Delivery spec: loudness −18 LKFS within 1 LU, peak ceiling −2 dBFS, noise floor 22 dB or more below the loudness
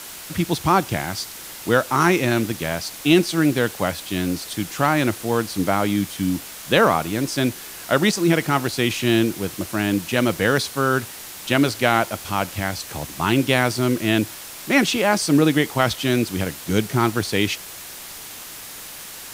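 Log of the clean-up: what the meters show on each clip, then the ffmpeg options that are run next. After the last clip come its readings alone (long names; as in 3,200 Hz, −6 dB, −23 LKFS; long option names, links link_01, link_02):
background noise floor −37 dBFS; target noise floor −43 dBFS; integrated loudness −21.0 LKFS; sample peak −1.5 dBFS; target loudness −18.0 LKFS
→ -af "afftdn=noise_reduction=6:noise_floor=-37"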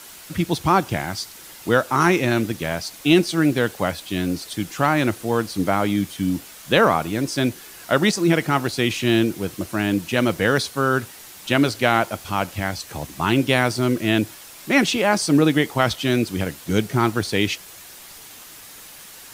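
background noise floor −42 dBFS; target noise floor −43 dBFS
→ -af "afftdn=noise_reduction=6:noise_floor=-42"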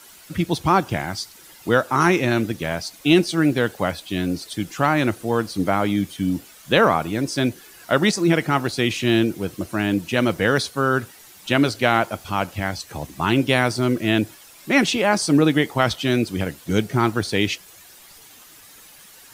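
background noise floor −47 dBFS; integrated loudness −21.0 LKFS; sample peak −1.5 dBFS; target loudness −18.0 LKFS
→ -af "volume=3dB,alimiter=limit=-2dB:level=0:latency=1"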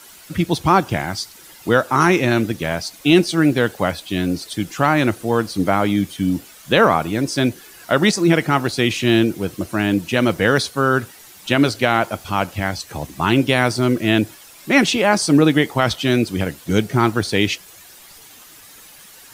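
integrated loudness −18.5 LKFS; sample peak −2.0 dBFS; background noise floor −44 dBFS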